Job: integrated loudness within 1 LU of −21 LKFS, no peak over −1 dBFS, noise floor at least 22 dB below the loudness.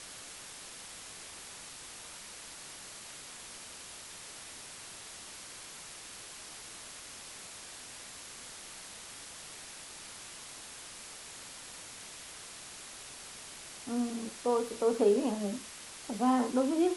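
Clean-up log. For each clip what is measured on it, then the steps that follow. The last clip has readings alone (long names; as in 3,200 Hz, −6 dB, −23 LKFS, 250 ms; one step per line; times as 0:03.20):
background noise floor −48 dBFS; target noise floor −60 dBFS; integrated loudness −38.0 LKFS; sample peak −15.5 dBFS; target loudness −21.0 LKFS
→ noise reduction from a noise print 12 dB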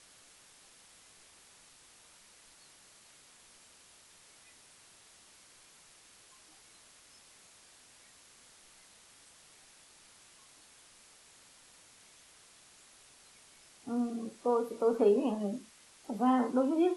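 background noise floor −60 dBFS; integrated loudness −31.0 LKFS; sample peak −16.0 dBFS; target loudness −21.0 LKFS
→ level +10 dB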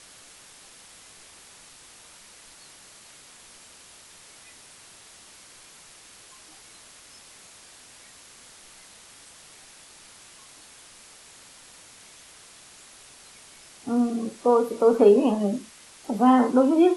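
integrated loudness −21.0 LKFS; sample peak −6.0 dBFS; background noise floor −50 dBFS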